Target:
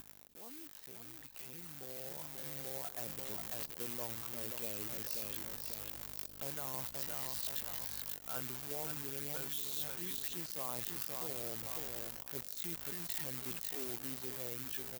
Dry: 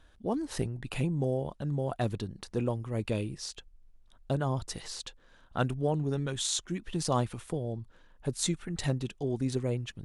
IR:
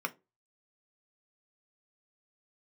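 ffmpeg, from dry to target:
-filter_complex "[0:a]asplit=2[s0][s1];[s1]asoftclip=type=tanh:threshold=0.0447,volume=0.355[s2];[s0][s2]amix=inputs=2:normalize=0,aeval=exprs='val(0)+0.00794*(sin(2*PI*50*n/s)+sin(2*PI*2*50*n/s)/2+sin(2*PI*3*50*n/s)/3+sin(2*PI*4*50*n/s)/4+sin(2*PI*5*50*n/s)/5)':c=same,aecho=1:1:359|718|1077|1436:0.376|0.132|0.046|0.0161,areverse,acompressor=threshold=0.02:ratio=10,areverse,lowpass=2500,acrusher=bits=8:dc=4:mix=0:aa=0.000001,atempo=0.67,aemphasis=mode=production:type=riaa,alimiter=level_in=5.01:limit=0.0631:level=0:latency=1:release=197,volume=0.2,dynaudnorm=f=270:g=17:m=3.16,volume=1.41"

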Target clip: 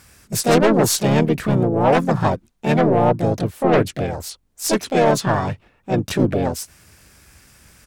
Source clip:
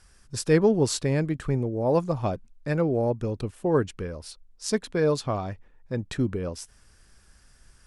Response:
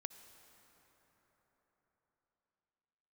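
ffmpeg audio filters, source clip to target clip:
-filter_complex "[0:a]highpass=67,aeval=exprs='0.335*(cos(1*acos(clip(val(0)/0.335,-1,1)))-cos(1*PI/2))+0.0266*(cos(4*acos(clip(val(0)/0.335,-1,1)))-cos(4*PI/2))+0.119*(cos(5*acos(clip(val(0)/0.335,-1,1)))-cos(5*PI/2))+0.106*(cos(6*acos(clip(val(0)/0.335,-1,1)))-cos(6*PI/2))+0.0668*(cos(8*acos(clip(val(0)/0.335,-1,1)))-cos(8*PI/2))':c=same,asplit=4[s0][s1][s2][s3];[s1]asetrate=35002,aresample=44100,atempo=1.25992,volume=0.178[s4];[s2]asetrate=55563,aresample=44100,atempo=0.793701,volume=0.501[s5];[s3]asetrate=66075,aresample=44100,atempo=0.66742,volume=0.794[s6];[s0][s4][s5][s6]amix=inputs=4:normalize=0,volume=0.891"

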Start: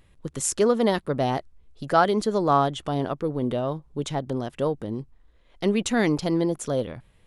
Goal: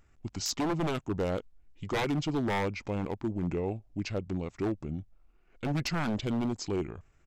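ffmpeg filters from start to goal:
-af "aeval=exprs='0.119*(abs(mod(val(0)/0.119+3,4)-2)-1)':c=same,asetrate=31183,aresample=44100,atempo=1.41421,volume=0.562"

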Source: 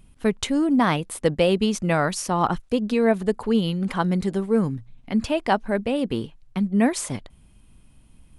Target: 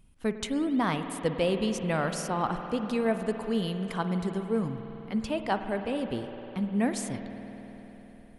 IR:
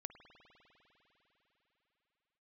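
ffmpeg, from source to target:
-filter_complex "[0:a]asettb=1/sr,asplit=3[s0][s1][s2];[s0]atrim=end=2.794[s3];[s1]atrim=start=2.79:end=4,asetpts=PTS-STARTPTS,afade=t=in:d=0.004:c=qsin,afade=t=out:st=1.206:d=0.004:c=qsin,highshelf=f=5600:g=5.5[s4];[s2]atrim=start=3.996[s5];[s3][s4]acrossfade=d=0.004:c1=hsin:c2=qsin[s6];[s6][s5]acrossfade=d=0.004:c1=qsin:c2=hsin[s7];[1:a]atrim=start_sample=2205[s8];[s7][s8]afir=irnorm=-1:irlink=0,volume=0.794"

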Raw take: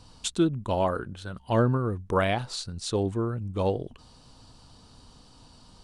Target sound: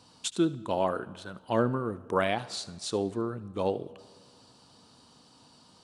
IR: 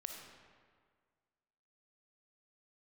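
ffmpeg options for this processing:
-filter_complex "[0:a]highpass=170,asplit=2[s0][s1];[1:a]atrim=start_sample=2205,adelay=75[s2];[s1][s2]afir=irnorm=-1:irlink=0,volume=0.188[s3];[s0][s3]amix=inputs=2:normalize=0,volume=0.794"

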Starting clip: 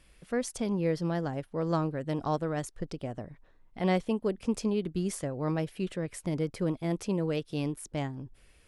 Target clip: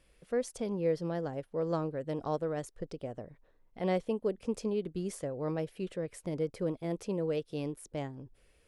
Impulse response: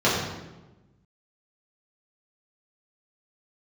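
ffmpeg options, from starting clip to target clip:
-af "equalizer=f=490:t=o:w=0.78:g=7.5,volume=0.473"

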